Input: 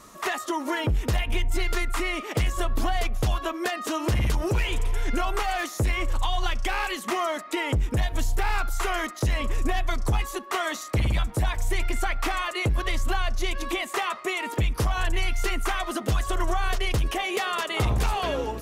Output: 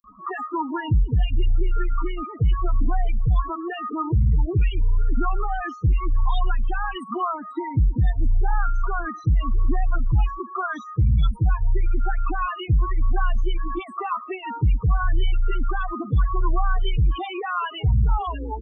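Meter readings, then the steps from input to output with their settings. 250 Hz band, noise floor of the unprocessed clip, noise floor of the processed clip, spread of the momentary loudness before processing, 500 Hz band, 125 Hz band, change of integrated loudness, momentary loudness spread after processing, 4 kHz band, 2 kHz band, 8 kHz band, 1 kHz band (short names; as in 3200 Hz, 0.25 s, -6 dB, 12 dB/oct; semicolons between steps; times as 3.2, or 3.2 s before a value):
+0.5 dB, -39 dBFS, -39 dBFS, 3 LU, -4.0 dB, +5.5 dB, +2.5 dB, 7 LU, -8.0 dB, -5.0 dB, under -25 dB, +1.0 dB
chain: loudest bins only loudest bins 8; fixed phaser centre 2100 Hz, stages 6; bands offset in time highs, lows 40 ms, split 5000 Hz; gain +6 dB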